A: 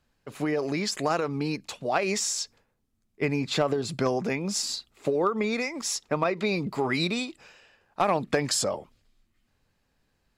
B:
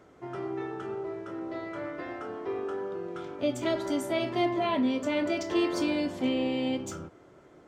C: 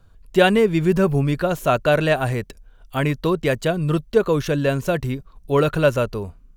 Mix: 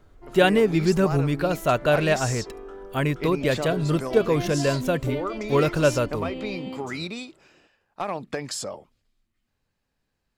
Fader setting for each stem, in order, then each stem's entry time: −5.5, −6.5, −3.0 decibels; 0.00, 0.00, 0.00 seconds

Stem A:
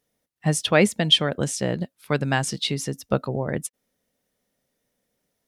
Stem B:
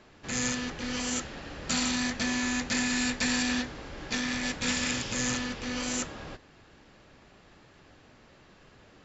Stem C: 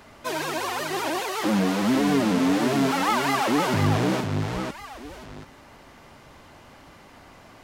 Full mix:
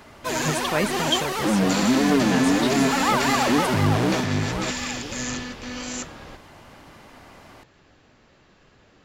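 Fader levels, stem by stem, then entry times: −7.0, 0.0, +1.5 decibels; 0.00, 0.00, 0.00 seconds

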